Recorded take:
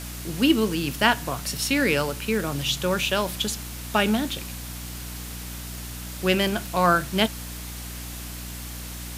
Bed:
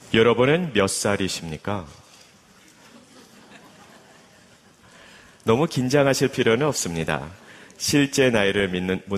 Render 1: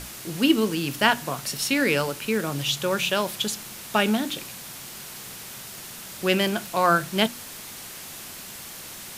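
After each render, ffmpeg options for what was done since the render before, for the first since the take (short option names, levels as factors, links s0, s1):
-af "bandreject=f=60:t=h:w=6,bandreject=f=120:t=h:w=6,bandreject=f=180:t=h:w=6,bandreject=f=240:t=h:w=6,bandreject=f=300:t=h:w=6"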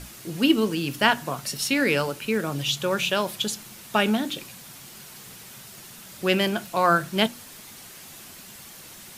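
-af "afftdn=nr=6:nf=-40"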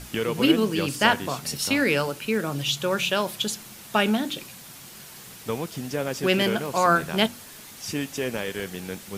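-filter_complex "[1:a]volume=0.299[s0];[0:a][s0]amix=inputs=2:normalize=0"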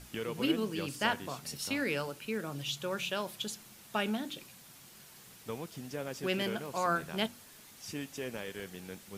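-af "volume=0.282"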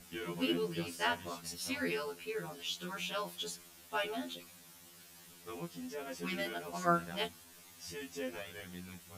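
-af "asoftclip=type=hard:threshold=0.178,afftfilt=real='re*2*eq(mod(b,4),0)':imag='im*2*eq(mod(b,4),0)':win_size=2048:overlap=0.75"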